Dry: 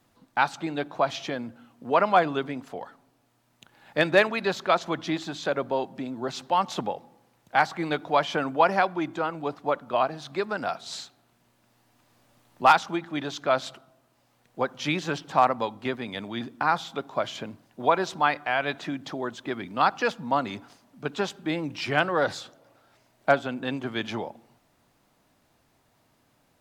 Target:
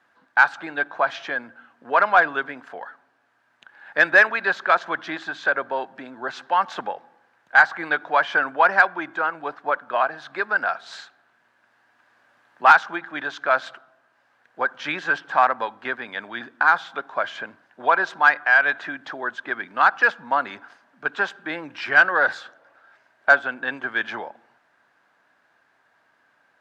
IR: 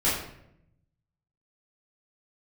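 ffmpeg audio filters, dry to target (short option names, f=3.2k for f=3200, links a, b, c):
-filter_complex "[0:a]bandpass=f=1.3k:t=q:w=0.76:csg=0,equalizer=f=1.6k:w=5:g=13,asplit=2[a][b];[b]asoftclip=type=tanh:threshold=-12.5dB,volume=-3.5dB[c];[a][c]amix=inputs=2:normalize=0"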